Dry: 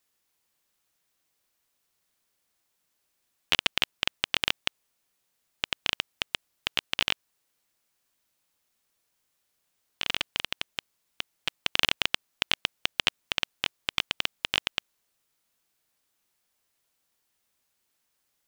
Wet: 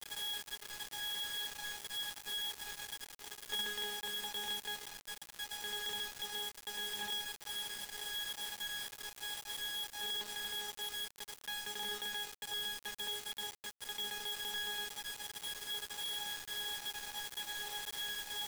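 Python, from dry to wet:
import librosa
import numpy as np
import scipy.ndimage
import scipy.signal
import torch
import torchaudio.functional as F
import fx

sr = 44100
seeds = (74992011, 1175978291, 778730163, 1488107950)

y = x + 0.5 * 10.0 ** (-13.5 / 20.0) * np.diff(np.sign(x), prepend=np.sign(x[:1]))
y = scipy.signal.sosfilt(scipy.signal.butter(2, 370.0, 'highpass', fs=sr, output='sos'), y)
y = fx.octave_resonator(y, sr, note='G#', decay_s=0.62)
y = fx.echo_diffused(y, sr, ms=471, feedback_pct=54, wet_db=-12.5)
y = fx.rider(y, sr, range_db=10, speed_s=2.0)
y = fx.quant_companded(y, sr, bits=4)
y = y * 10.0 ** (11.5 / 20.0)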